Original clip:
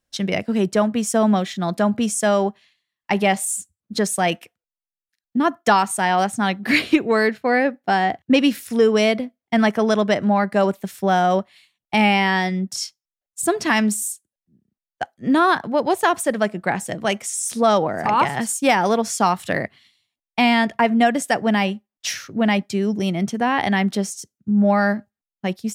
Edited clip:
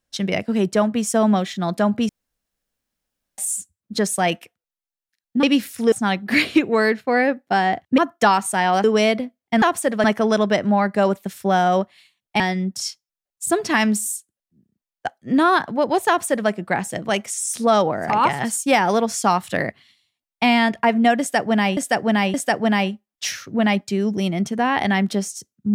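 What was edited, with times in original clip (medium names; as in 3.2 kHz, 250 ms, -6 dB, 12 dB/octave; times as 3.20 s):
2.09–3.38 s: room tone
5.43–6.29 s: swap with 8.35–8.84 s
11.98–12.36 s: delete
16.04–16.46 s: copy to 9.62 s
21.16–21.73 s: loop, 3 plays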